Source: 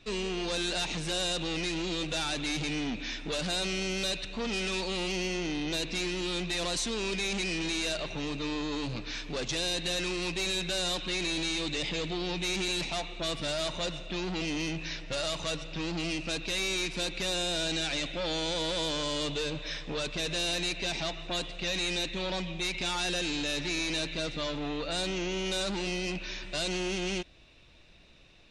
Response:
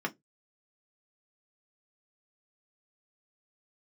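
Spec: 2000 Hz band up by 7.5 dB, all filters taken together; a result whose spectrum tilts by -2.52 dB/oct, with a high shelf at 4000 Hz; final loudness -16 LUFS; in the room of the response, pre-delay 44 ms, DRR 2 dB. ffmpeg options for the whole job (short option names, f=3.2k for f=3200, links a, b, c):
-filter_complex "[0:a]equalizer=f=2k:t=o:g=9,highshelf=f=4k:g=3.5,asplit=2[a][b];[1:a]atrim=start_sample=2205,adelay=44[c];[b][c]afir=irnorm=-1:irlink=0,volume=-8dB[d];[a][d]amix=inputs=2:normalize=0,volume=10dB"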